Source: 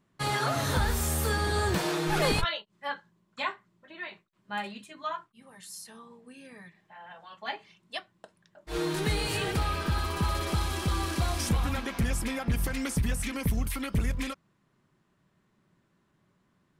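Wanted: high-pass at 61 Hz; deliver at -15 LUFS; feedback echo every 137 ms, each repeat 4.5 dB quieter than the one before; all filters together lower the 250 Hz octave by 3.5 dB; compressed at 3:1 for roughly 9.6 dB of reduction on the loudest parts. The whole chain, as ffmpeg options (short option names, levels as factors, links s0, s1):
-af "highpass=61,equalizer=f=250:t=o:g=-5,acompressor=threshold=0.0126:ratio=3,aecho=1:1:137|274|411|548|685|822|959|1096|1233:0.596|0.357|0.214|0.129|0.0772|0.0463|0.0278|0.0167|0.01,volume=15"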